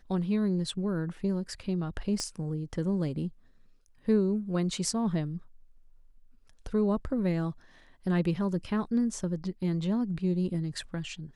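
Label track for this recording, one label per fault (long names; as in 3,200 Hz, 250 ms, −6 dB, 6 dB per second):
2.200000	2.200000	click −19 dBFS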